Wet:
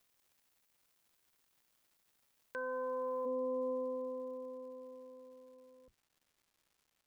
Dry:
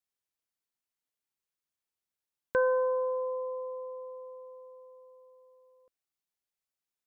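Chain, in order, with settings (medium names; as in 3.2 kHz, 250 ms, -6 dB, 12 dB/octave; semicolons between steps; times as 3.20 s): octave divider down 1 oct, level 0 dB; tilt EQ +4 dB/octave, from 3.25 s -2.5 dB/octave; peak limiter -30.5 dBFS, peak gain reduction 13 dB; crackle 460 per s -62 dBFS; trim -1 dB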